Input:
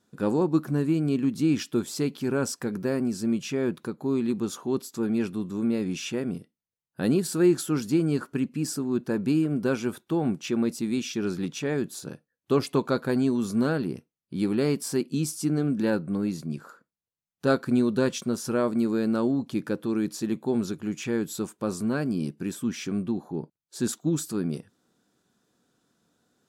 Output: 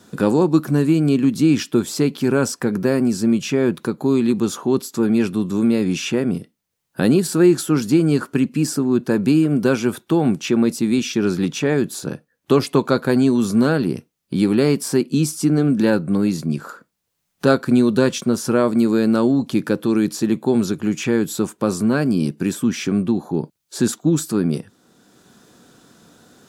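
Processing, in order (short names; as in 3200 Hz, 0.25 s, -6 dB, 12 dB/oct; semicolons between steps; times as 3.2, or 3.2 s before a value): three-band squash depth 40%; gain +8.5 dB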